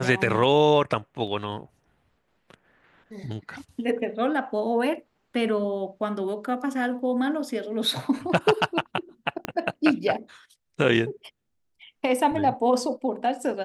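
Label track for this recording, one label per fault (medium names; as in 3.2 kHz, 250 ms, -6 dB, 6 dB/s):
1.270000	1.270000	dropout 4.3 ms
9.450000	9.450000	pop -13 dBFS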